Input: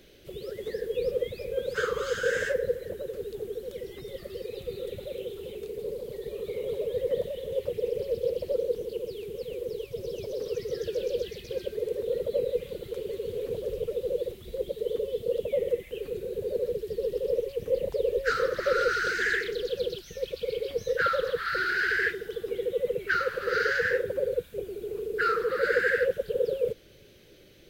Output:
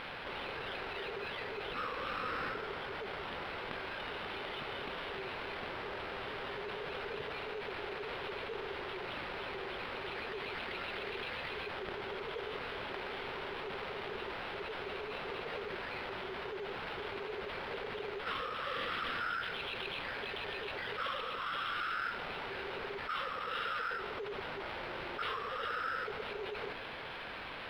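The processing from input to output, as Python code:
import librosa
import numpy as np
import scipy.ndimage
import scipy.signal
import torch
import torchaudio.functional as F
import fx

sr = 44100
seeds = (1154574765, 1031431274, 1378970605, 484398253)

y = scipy.signal.sosfilt(scipy.signal.butter(2, 600.0, 'highpass', fs=sr, output='sos'), x)
y = np.diff(y, prepend=0.0)
y = fx.formant_shift(y, sr, semitones=-4)
y = fx.sample_hold(y, sr, seeds[0], rate_hz=6600.0, jitter_pct=0)
y = fx.air_absorb(y, sr, metres=320.0)
y = fx.env_flatten(y, sr, amount_pct=70)
y = F.gain(torch.from_numpy(y), 4.0).numpy()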